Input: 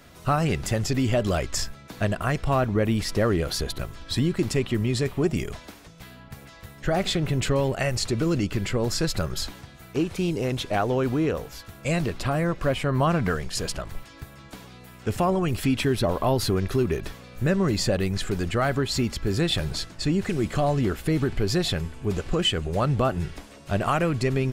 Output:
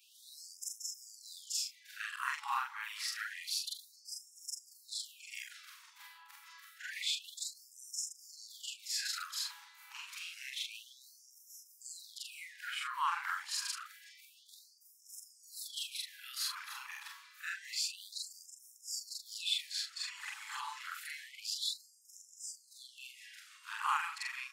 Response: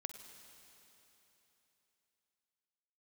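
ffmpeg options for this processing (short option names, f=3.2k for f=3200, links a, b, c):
-af "afftfilt=real='re':imag='-im':win_size=4096:overlap=0.75,afftfilt=real='re*gte(b*sr/1024,780*pow(5200/780,0.5+0.5*sin(2*PI*0.28*pts/sr)))':imag='im*gte(b*sr/1024,780*pow(5200/780,0.5+0.5*sin(2*PI*0.28*pts/sr)))':win_size=1024:overlap=0.75,volume=-1.5dB"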